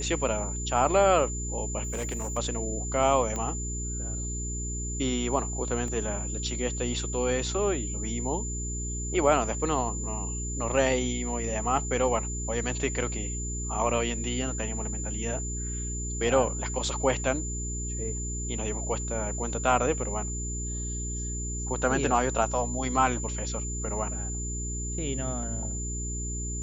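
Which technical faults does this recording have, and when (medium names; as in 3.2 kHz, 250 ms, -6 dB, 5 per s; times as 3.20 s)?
hum 60 Hz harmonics 7 -34 dBFS
whine 7.1 kHz -35 dBFS
1.83–2.38 s: clipped -27.5 dBFS
3.36 s: pop -19 dBFS
5.88 s: dropout 2 ms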